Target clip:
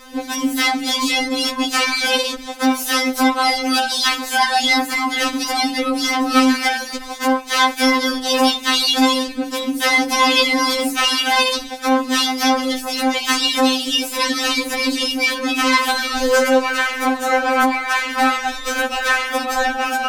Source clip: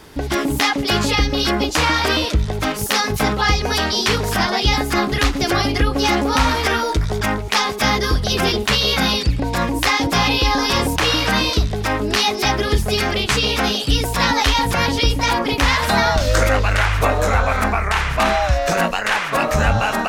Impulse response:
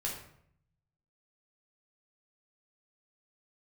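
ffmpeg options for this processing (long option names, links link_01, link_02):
-filter_complex "[0:a]asplit=2[link_01][link_02];[link_02]asetrate=88200,aresample=44100,atempo=0.5,volume=-13dB[link_03];[link_01][link_03]amix=inputs=2:normalize=0,acontrast=68,afftfilt=real='re*3.46*eq(mod(b,12),0)':imag='im*3.46*eq(mod(b,12),0)':win_size=2048:overlap=0.75,volume=-2.5dB"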